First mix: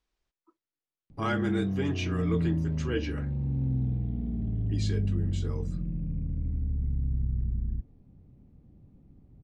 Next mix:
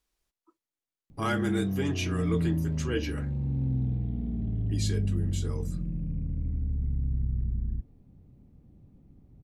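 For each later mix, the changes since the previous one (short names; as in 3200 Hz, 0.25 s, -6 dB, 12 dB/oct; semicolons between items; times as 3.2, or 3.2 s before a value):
master: remove air absorption 100 m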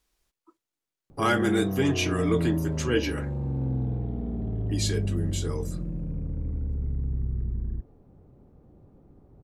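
speech +6.0 dB; background: add band shelf 740 Hz +11 dB 2.5 oct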